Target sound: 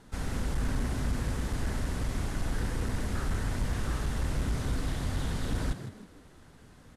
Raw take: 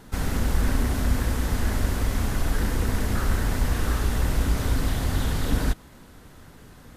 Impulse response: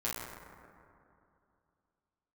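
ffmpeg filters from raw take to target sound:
-filter_complex "[0:a]lowpass=frequency=11000:width=0.5412,lowpass=frequency=11000:width=1.3066,volume=16dB,asoftclip=hard,volume=-16dB,asplit=2[link_01][link_02];[link_02]asplit=4[link_03][link_04][link_05][link_06];[link_03]adelay=159,afreqshift=80,volume=-11dB[link_07];[link_04]adelay=318,afreqshift=160,volume=-20.1dB[link_08];[link_05]adelay=477,afreqshift=240,volume=-29.2dB[link_09];[link_06]adelay=636,afreqshift=320,volume=-38.4dB[link_10];[link_07][link_08][link_09][link_10]amix=inputs=4:normalize=0[link_11];[link_01][link_11]amix=inputs=2:normalize=0,volume=-7.5dB"

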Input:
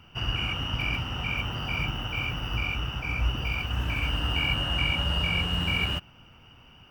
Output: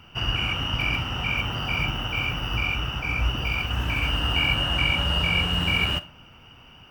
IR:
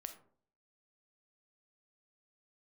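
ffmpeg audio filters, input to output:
-filter_complex "[0:a]asplit=2[link_01][link_02];[1:a]atrim=start_sample=2205,lowshelf=frequency=200:gain=-8.5[link_03];[link_02][link_03]afir=irnorm=-1:irlink=0,volume=1.5dB[link_04];[link_01][link_04]amix=inputs=2:normalize=0"

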